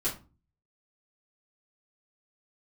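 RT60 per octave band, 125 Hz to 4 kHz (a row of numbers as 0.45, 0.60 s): 0.60, 0.50, 0.30, 0.30, 0.25, 0.20 s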